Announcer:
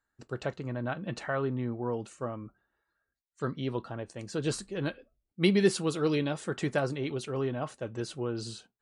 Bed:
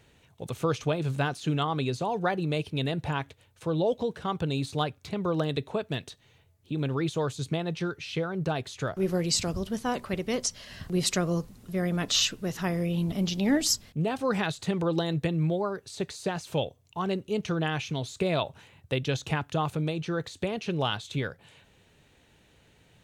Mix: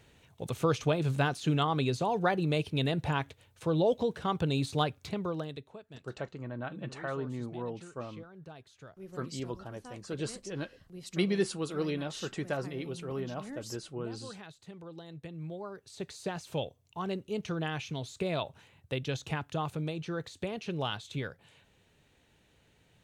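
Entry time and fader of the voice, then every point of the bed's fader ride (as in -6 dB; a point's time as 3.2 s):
5.75 s, -5.0 dB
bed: 5.06 s -0.5 dB
5.83 s -19.5 dB
15 s -19.5 dB
16.18 s -5.5 dB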